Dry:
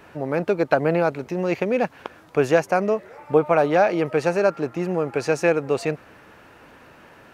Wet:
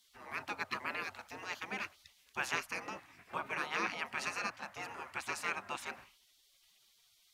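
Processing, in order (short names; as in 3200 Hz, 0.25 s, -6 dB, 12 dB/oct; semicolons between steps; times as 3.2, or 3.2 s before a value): frequency shift +14 Hz; de-hum 66.9 Hz, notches 7; spectral gate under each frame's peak -20 dB weak; gain -3.5 dB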